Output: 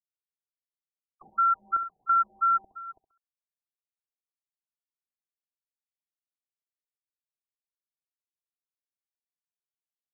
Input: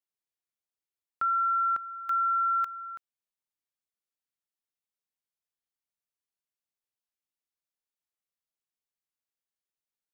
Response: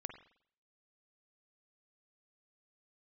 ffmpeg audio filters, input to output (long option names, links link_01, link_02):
-filter_complex "[0:a]agate=range=-33dB:threshold=-34dB:ratio=3:detection=peak,equalizer=frequency=650:width_type=o:width=0.29:gain=5,aecho=1:1:2.8:0.95,adynamicequalizer=threshold=0.01:dfrequency=960:dqfactor=1.2:tfrequency=960:tqfactor=1.2:attack=5:release=100:ratio=0.375:range=4:mode=cutabove:tftype=bell,asplit=2[link_01][link_02];[link_02]acompressor=threshold=-40dB:ratio=4,volume=-2dB[link_03];[link_01][link_03]amix=inputs=2:normalize=0,acrusher=bits=3:mode=log:mix=0:aa=0.000001,aecho=1:1:67|134|201:0.251|0.0678|0.0183,afftfilt=real='re*lt(b*sr/1024,890*pow(1800/890,0.5+0.5*sin(2*PI*2.9*pts/sr)))':imag='im*lt(b*sr/1024,890*pow(1800/890,0.5+0.5*sin(2*PI*2.9*pts/sr)))':win_size=1024:overlap=0.75"